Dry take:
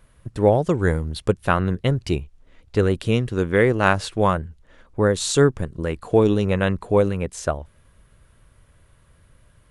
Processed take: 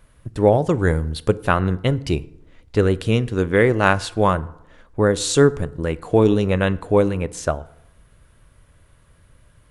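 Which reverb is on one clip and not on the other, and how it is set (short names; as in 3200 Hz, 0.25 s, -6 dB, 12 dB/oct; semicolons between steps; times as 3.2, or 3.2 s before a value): FDN reverb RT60 0.82 s, low-frequency decay 1×, high-frequency decay 0.55×, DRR 16 dB; gain +1.5 dB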